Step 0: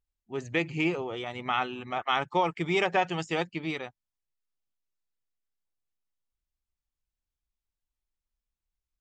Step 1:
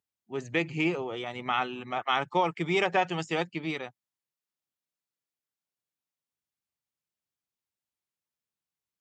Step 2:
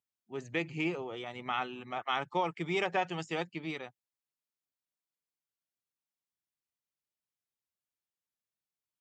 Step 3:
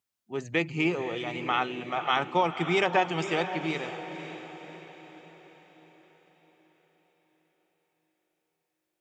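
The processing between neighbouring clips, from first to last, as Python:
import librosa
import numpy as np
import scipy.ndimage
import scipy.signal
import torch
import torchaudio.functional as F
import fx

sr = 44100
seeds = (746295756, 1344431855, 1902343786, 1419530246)

y1 = scipy.signal.sosfilt(scipy.signal.butter(4, 110.0, 'highpass', fs=sr, output='sos'), x)
y2 = fx.quant_float(y1, sr, bits=8)
y2 = y2 * 10.0 ** (-5.5 / 20.0)
y3 = fx.echo_diffused(y2, sr, ms=535, feedback_pct=50, wet_db=-10)
y3 = y3 * 10.0 ** (6.5 / 20.0)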